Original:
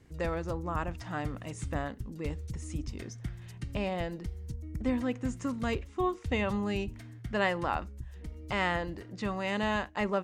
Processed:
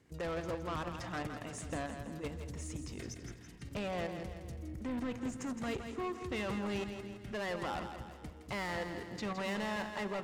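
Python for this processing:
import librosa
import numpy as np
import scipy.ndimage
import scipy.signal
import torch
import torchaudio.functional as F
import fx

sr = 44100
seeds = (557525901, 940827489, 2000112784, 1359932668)

p1 = fx.highpass(x, sr, hz=160.0, slope=6)
p2 = fx.level_steps(p1, sr, step_db=12)
p3 = 10.0 ** (-38.5 / 20.0) * np.tanh(p2 / 10.0 ** (-38.5 / 20.0))
p4 = p3 + fx.echo_split(p3, sr, split_hz=380.0, low_ms=234, high_ms=165, feedback_pct=52, wet_db=-8.0, dry=0)
y = F.gain(torch.from_numpy(p4), 4.5).numpy()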